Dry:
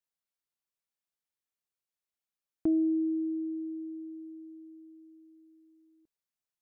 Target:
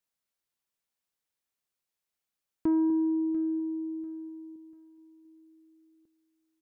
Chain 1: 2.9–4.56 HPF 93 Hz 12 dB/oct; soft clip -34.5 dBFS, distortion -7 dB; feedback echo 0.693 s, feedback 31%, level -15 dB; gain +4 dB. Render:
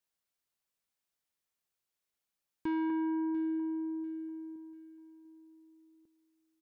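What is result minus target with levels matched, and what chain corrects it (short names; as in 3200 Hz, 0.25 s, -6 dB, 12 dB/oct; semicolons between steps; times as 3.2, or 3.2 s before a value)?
soft clip: distortion +10 dB
2.9–4.56 HPF 93 Hz 12 dB/oct; soft clip -24.5 dBFS, distortion -18 dB; feedback echo 0.693 s, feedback 31%, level -15 dB; gain +4 dB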